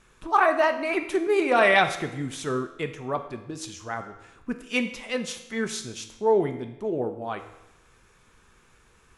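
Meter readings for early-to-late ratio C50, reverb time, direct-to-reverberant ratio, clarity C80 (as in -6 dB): 10.0 dB, 0.90 s, 6.5 dB, 12.0 dB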